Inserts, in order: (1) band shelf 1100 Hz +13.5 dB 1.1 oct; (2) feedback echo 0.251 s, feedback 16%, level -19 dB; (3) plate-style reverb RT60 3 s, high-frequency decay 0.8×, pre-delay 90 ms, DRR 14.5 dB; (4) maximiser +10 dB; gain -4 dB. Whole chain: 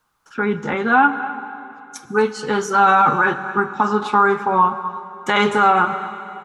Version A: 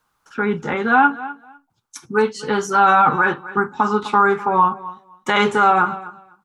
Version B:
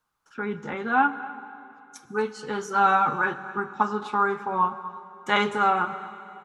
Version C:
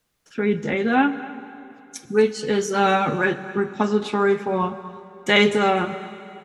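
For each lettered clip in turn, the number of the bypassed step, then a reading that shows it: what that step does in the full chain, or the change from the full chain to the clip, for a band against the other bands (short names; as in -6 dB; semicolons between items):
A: 3, momentary loudness spread change +2 LU; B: 4, crest factor change +6.0 dB; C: 1, 1 kHz band -9.5 dB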